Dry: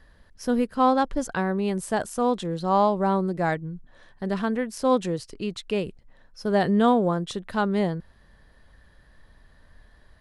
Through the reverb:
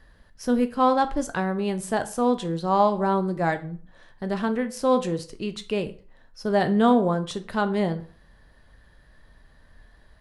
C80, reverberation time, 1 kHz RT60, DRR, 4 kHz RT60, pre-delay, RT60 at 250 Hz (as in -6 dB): 19.5 dB, 0.45 s, 0.45 s, 9.0 dB, 0.35 s, 10 ms, 0.40 s